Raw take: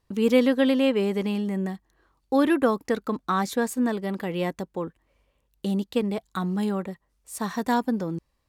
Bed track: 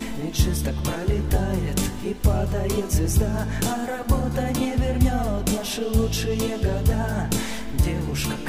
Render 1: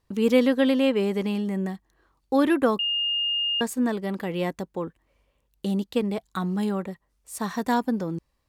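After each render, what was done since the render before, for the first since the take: 2.79–3.61 bleep 2830 Hz -22.5 dBFS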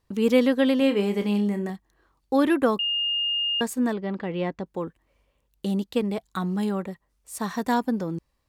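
0.77–1.7 flutter echo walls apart 5 m, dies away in 0.21 s; 3.93–4.66 air absorption 180 m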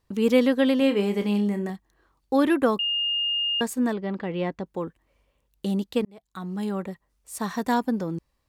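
6.05–6.88 fade in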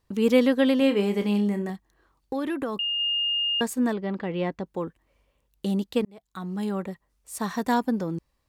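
1.61–3 compressor, threshold -25 dBFS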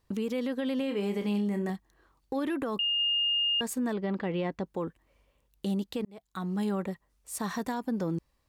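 compressor, threshold -25 dBFS, peak gain reduction 11 dB; limiter -23.5 dBFS, peak gain reduction 6 dB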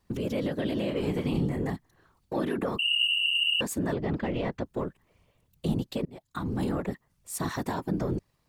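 in parallel at -11 dB: hard clip -32 dBFS, distortion -10 dB; on the sum: whisperiser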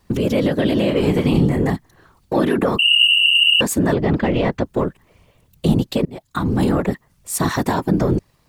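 gain +12 dB

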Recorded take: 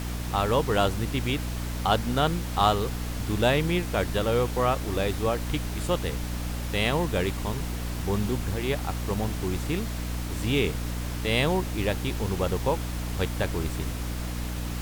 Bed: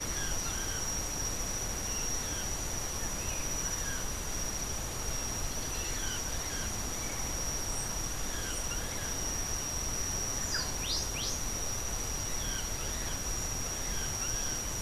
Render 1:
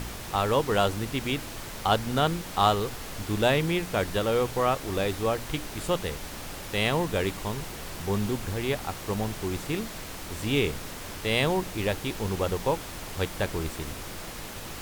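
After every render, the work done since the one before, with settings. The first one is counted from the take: de-hum 60 Hz, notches 5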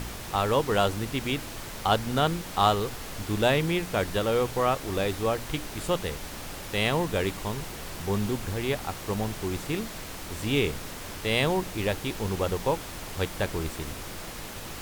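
nothing audible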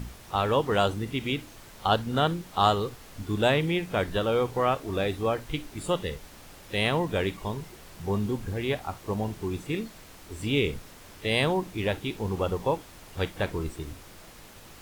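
noise print and reduce 10 dB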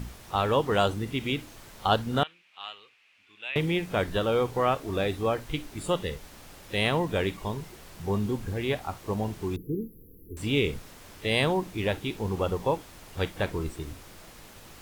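2.23–3.56 band-pass 2500 Hz, Q 5.6; 9.56–10.37 brick-wall FIR band-stop 510–11000 Hz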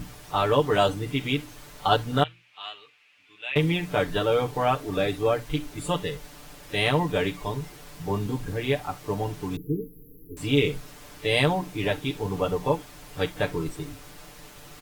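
notches 60/120 Hz; comb 6.8 ms, depth 87%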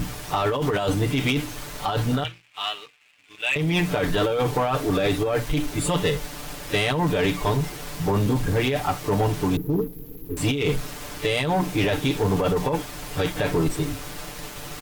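negative-ratio compressor -27 dBFS, ratio -1; sample leveller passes 2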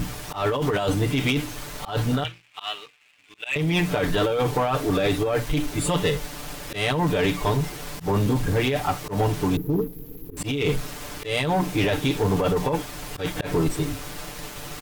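auto swell 0.111 s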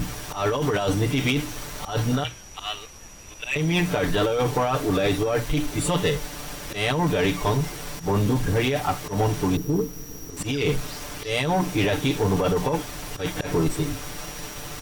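add bed -9 dB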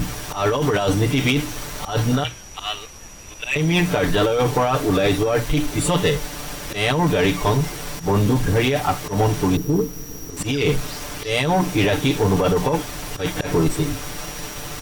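gain +4 dB

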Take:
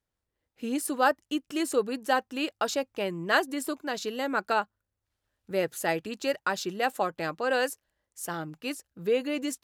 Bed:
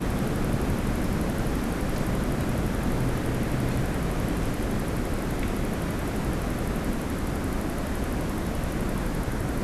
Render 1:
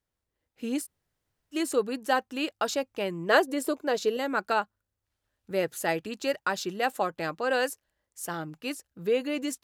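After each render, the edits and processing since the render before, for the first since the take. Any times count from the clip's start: 0.84–1.54 room tone, crossfade 0.06 s; 3.29–4.17 bell 490 Hz +10 dB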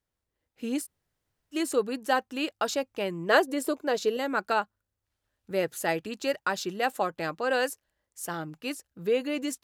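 nothing audible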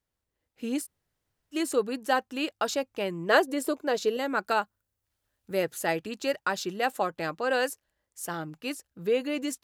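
4.46–5.63 high shelf 8200 Hz +7.5 dB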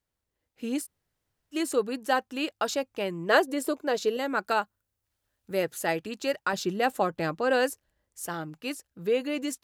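6.53–8.27 low shelf 390 Hz +7.5 dB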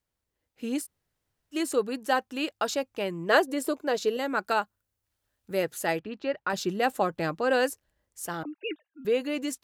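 5.99–6.5 air absorption 320 m; 8.43–9.05 sine-wave speech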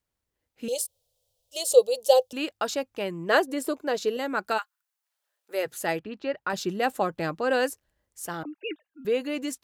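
0.68–2.33 EQ curve 110 Hz 0 dB, 300 Hz -27 dB, 510 Hz +14 dB, 1700 Hz -23 dB, 3300 Hz +9 dB; 4.57–5.65 HPF 1200 Hz -> 350 Hz 24 dB/oct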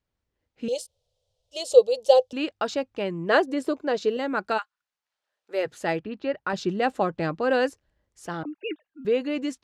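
LPF 5200 Hz 12 dB/oct; low shelf 470 Hz +4.5 dB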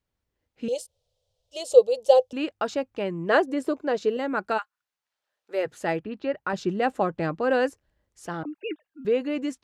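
dynamic EQ 4200 Hz, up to -5 dB, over -48 dBFS, Q 1.1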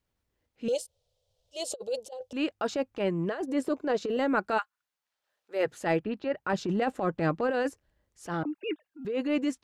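negative-ratio compressor -24 dBFS, ratio -0.5; transient shaper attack -8 dB, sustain -3 dB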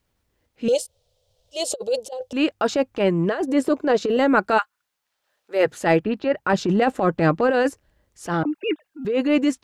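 gain +9 dB

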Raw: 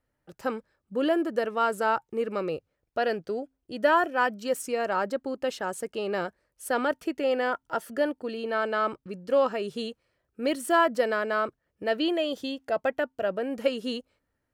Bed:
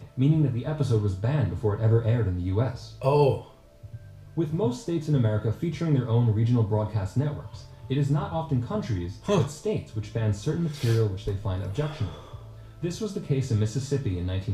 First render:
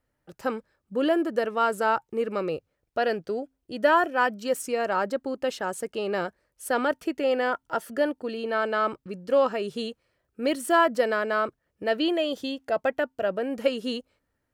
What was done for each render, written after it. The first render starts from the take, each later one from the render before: gain +1.5 dB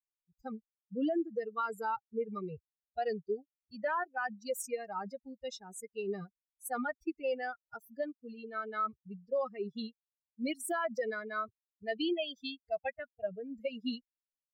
per-bin expansion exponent 3; limiter -25.5 dBFS, peak gain reduction 11.5 dB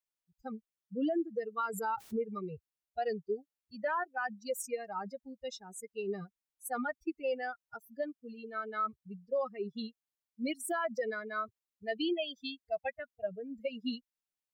1.69–2.25 backwards sustainer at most 67 dB/s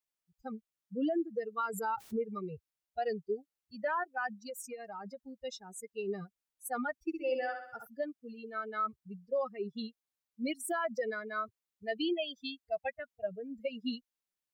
4.38–5.39 compressor 3:1, threshold -41 dBFS; 6.95–7.87 flutter echo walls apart 11.2 m, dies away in 0.65 s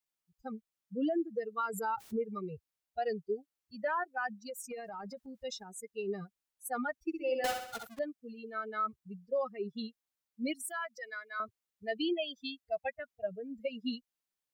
4.7–5.64 transient shaper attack 0 dB, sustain +7 dB; 7.44–7.99 half-waves squared off; 10.62–11.4 HPF 1200 Hz

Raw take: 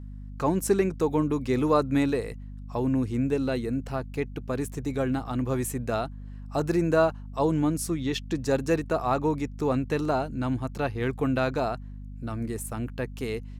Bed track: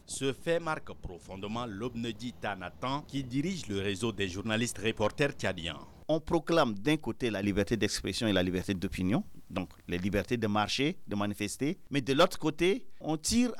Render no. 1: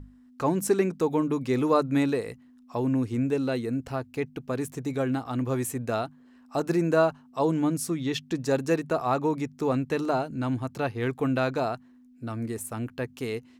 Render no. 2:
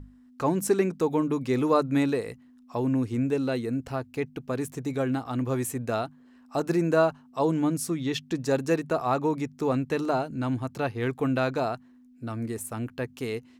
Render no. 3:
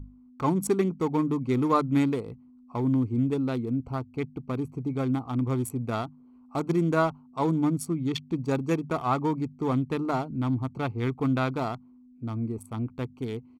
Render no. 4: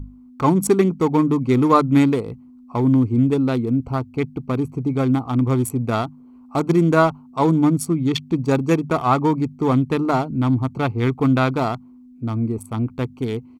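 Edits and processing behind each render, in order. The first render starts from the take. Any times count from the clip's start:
notches 50/100/150/200 Hz
nothing audible
Wiener smoothing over 25 samples; comb 0.9 ms, depth 48%
gain +8.5 dB

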